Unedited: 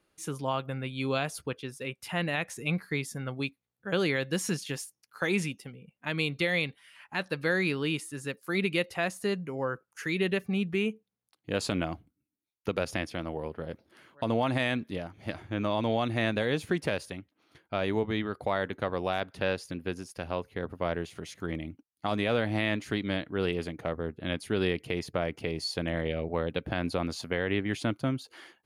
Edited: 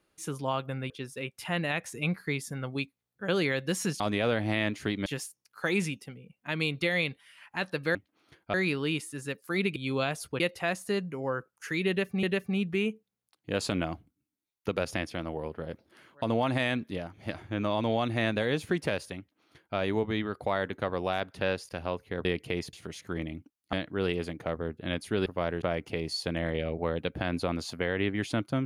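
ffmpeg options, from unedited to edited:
-filter_complex "[0:a]asplit=15[a][b][c][d][e][f][g][h][i][j][k][l][m][n][o];[a]atrim=end=0.902[p];[b]atrim=start=1.538:end=4.642[q];[c]atrim=start=22.058:end=23.122[r];[d]atrim=start=4.638:end=7.532[s];[e]atrim=start=17.178:end=17.772[t];[f]atrim=start=7.528:end=8.752[u];[g]atrim=start=0.898:end=1.542[v];[h]atrim=start=8.748:end=10.582[w];[i]atrim=start=10.228:end=19.692[x];[j]atrim=start=20.138:end=20.702[y];[k]atrim=start=24.648:end=25.132[z];[l]atrim=start=21.058:end=22.062[aa];[m]atrim=start=23.118:end=24.652[ab];[n]atrim=start=20.698:end=21.062[ac];[o]atrim=start=25.128[ad];[p][q]acrossfade=d=0.004:c1=hsin:c2=hsin[ae];[ae][r]acrossfade=d=0.004:c1=hsin:c2=hsin[af];[af][s]acrossfade=d=0.004:c1=hsin:c2=hsin[ag];[ag][t]acrossfade=d=0.004:c1=hsin:c2=hsin[ah];[ah][u]acrossfade=d=0.004:c1=hsin:c2=hsin[ai];[ai][v]acrossfade=d=0.004:c1=hsin:c2=hsin[aj];[aj][w]acrossfade=d=0.004:c1=hsin:c2=hsin[ak];[ak][x]acrossfade=d=0.004:c1=hsin:c2=hsin[al];[al][y]acrossfade=d=0.004:c1=hsin:c2=hsin[am];[am][z]acrossfade=d=0.004:c1=hsin:c2=hsin[an];[an][aa]acrossfade=d=0.004:c1=hsin:c2=hsin[ao];[ao][ab]acrossfade=d=0.004:c1=hsin:c2=hsin[ap];[ap][ac]acrossfade=d=0.004:c1=hsin:c2=hsin[aq];[aq][ad]acrossfade=d=0.004:c1=hsin:c2=hsin"

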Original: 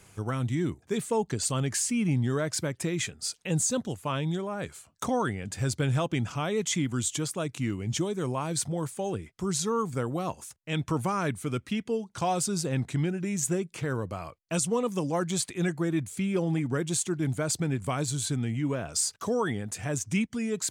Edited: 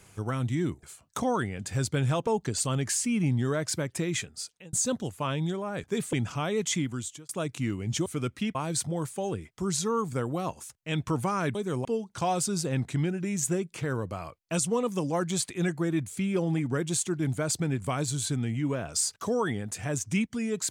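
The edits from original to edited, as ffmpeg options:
-filter_complex "[0:a]asplit=11[a][b][c][d][e][f][g][h][i][j][k];[a]atrim=end=0.832[l];[b]atrim=start=4.688:end=6.132[m];[c]atrim=start=1.118:end=3.58,asetpts=PTS-STARTPTS,afade=t=out:st=1.922:d=0.54[n];[d]atrim=start=3.58:end=4.692,asetpts=PTS-STARTPTS,afade=t=in:d=0.004:c=hsin[o];[e]atrim=start=0.828:end=1.122[p];[f]atrim=start=6.128:end=7.29,asetpts=PTS-STARTPTS,afade=t=out:st=0.622:d=0.54[q];[g]atrim=start=7.29:end=8.062,asetpts=PTS-STARTPTS,afade=t=in:d=0.004:c=hsin[r];[h]atrim=start=11.358:end=11.852[s];[i]atrim=start=8.358:end=11.362[t];[j]atrim=start=8.058:end=8.362[u];[k]atrim=start=11.848[v];[l][m]acrossfade=d=0.004:c1=hsin:c2=hsin[w];[n][o]concat=n=2:v=0:a=1[x];[w][x]acrossfade=d=0.004:c1=hsin:c2=hsin[y];[y][p]acrossfade=d=0.004:c1=hsin:c2=hsin[z];[q][r]concat=n=2:v=0:a=1[aa];[z][aa]acrossfade=d=0.004:c1=hsin:c2=hsin[ab];[ab][s]acrossfade=d=0.004:c1=hsin:c2=hsin[ac];[ac][t]acrossfade=d=0.004:c1=hsin:c2=hsin[ad];[ad][u]acrossfade=d=0.004:c1=hsin:c2=hsin[ae];[ae][v]acrossfade=d=0.004:c1=hsin:c2=hsin"

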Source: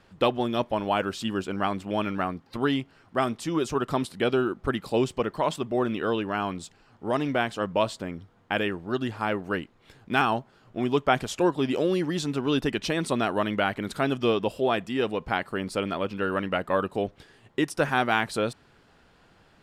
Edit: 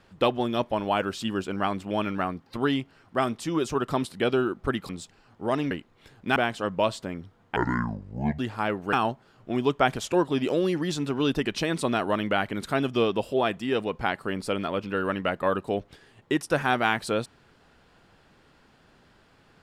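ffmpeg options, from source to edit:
-filter_complex "[0:a]asplit=7[a][b][c][d][e][f][g];[a]atrim=end=4.892[h];[b]atrim=start=6.508:end=7.332[i];[c]atrim=start=9.548:end=10.202[j];[d]atrim=start=7.328:end=8.534[k];[e]atrim=start=8.53:end=9.01,asetpts=PTS-STARTPTS,asetrate=25578,aresample=44100[l];[f]atrim=start=9.006:end=9.552[m];[g]atrim=start=10.198[n];[h][i]acrossfade=d=0.004:c1=hsin:c2=hsin[o];[o][j]acrossfade=d=0.004:c1=hsin:c2=hsin[p];[p][k]acrossfade=d=0.004:c1=hsin:c2=hsin[q];[q][l]acrossfade=d=0.004:c1=hsin:c2=hsin[r];[r][m]acrossfade=d=0.004:c1=hsin:c2=hsin[s];[s][n]acrossfade=d=0.004:c1=hsin:c2=hsin"

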